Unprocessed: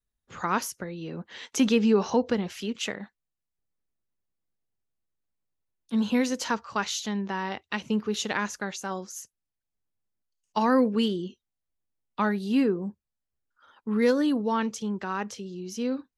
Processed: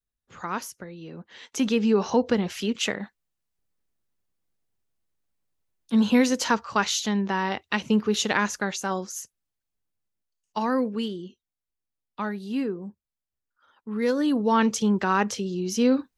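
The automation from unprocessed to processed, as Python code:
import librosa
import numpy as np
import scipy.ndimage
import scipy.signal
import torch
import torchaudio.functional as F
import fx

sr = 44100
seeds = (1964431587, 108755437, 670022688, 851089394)

y = fx.gain(x, sr, db=fx.line((1.34, -4.0), (2.57, 5.0), (9.0, 5.0), (11.09, -4.5), (13.92, -4.5), (14.73, 8.5)))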